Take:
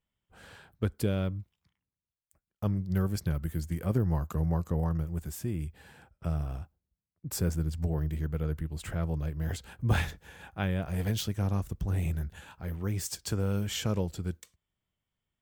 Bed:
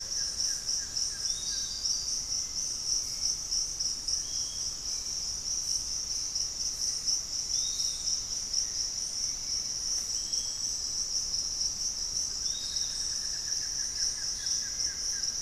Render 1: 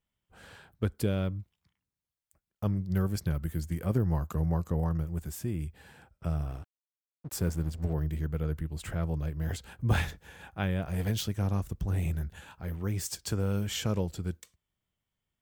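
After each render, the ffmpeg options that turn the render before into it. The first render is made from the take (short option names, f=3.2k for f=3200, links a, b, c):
-filter_complex "[0:a]asettb=1/sr,asplit=3[a][b][c];[a]atrim=end=6.504[d];[b]atrim=start=6.5:end=7.93,asetpts=PTS-STARTPTS,afade=t=in:d=0.004:c=qsin,afade=t=out:st=1.426:d=0.004:c=qsin,aeval=exprs='sgn(val(0))*max(abs(val(0))-0.00531,0)':c=same[e];[c]atrim=start=7.926[f];[d][e]acrossfade=d=0.004:c1=hsin:c2=qsin[g];[g][f]acrossfade=d=0.004:c1=qsin:c2=hsin"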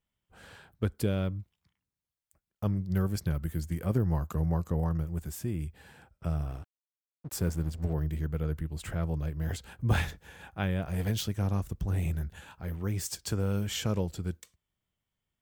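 -af anull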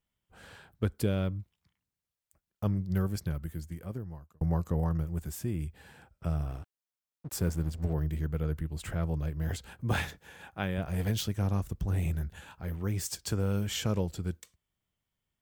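-filter_complex "[0:a]asettb=1/sr,asplit=3[a][b][c];[a]atrim=end=9.784[d];[b]atrim=start=9.78:end=10.78,asetpts=PTS-STARTPTS,afade=t=in:d=0.004:c=qsin,afade=t=out:st=0.996:d=0.004:c=qsin,highpass=f=150:p=1[e];[c]atrim=start=10.776[f];[d][e]acrossfade=d=0.004:c1=hsin:c2=qsin[g];[g][f]acrossfade=d=0.004:c1=qsin:c2=hsin,asplit=2[h][i];[h]atrim=end=4.41,asetpts=PTS-STARTPTS,afade=t=out:st=2.83:d=1.58[j];[i]atrim=start=4.41,asetpts=PTS-STARTPTS,afade=t=in:d=0.004:c=hsin[k];[j][k]concat=n=2:v=0:a=1"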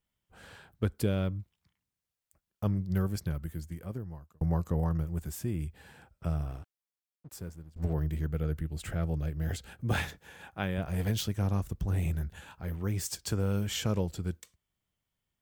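-filter_complex "[0:a]asettb=1/sr,asplit=3[a][b][c];[a]atrim=end=8.294[d];[b]atrim=start=8.29:end=9.96,asetpts=PTS-STARTPTS,afade=t=in:d=0.004:c=qsin,afade=t=out:st=1.666:d=0.004:c=qsin,equalizer=f=1k:t=o:w=0.25:g=-8.5[e];[c]atrim=start=9.956[f];[d][e]acrossfade=d=0.004:c1=hsin:c2=qsin[g];[g][f]acrossfade=d=0.004:c1=qsin:c2=hsin,asplit=2[h][i];[h]atrim=end=7.76,asetpts=PTS-STARTPTS,afade=t=out:st=6.26:d=1.5:silence=0.0668344[j];[i]atrim=start=7.76,asetpts=PTS-STARTPTS,afade=t=in:d=0.004:c=hsin:silence=0.0668344[k];[j][k]concat=n=2:v=0:a=1"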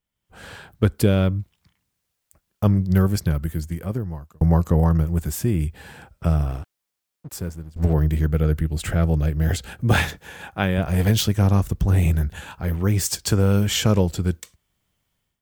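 -af "dynaudnorm=f=120:g=5:m=12dB"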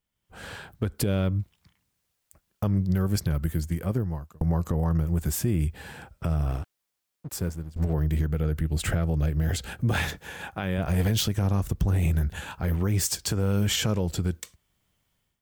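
-af "acompressor=threshold=-18dB:ratio=6,alimiter=limit=-15.5dB:level=0:latency=1:release=80"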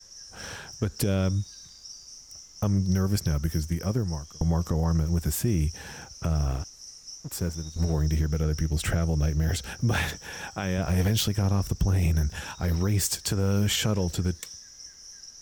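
-filter_complex "[1:a]volume=-13.5dB[a];[0:a][a]amix=inputs=2:normalize=0"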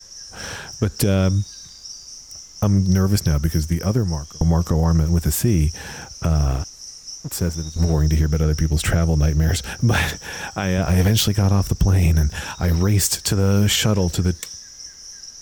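-af "volume=7.5dB"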